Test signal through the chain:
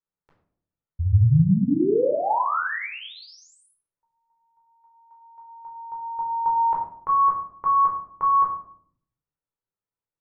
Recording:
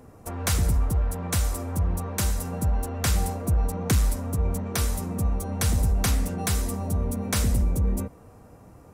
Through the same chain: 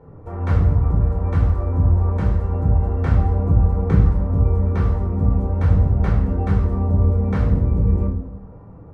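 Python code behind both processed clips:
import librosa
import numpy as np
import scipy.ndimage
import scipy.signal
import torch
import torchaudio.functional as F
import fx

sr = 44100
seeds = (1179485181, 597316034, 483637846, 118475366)

y = scipy.signal.sosfilt(scipy.signal.butter(2, 1200.0, 'lowpass', fs=sr, output='sos'), x)
y = fx.room_shoebox(y, sr, seeds[0], volume_m3=850.0, walls='furnished', distance_m=4.4)
y = F.gain(torch.from_numpy(y), -1.0).numpy()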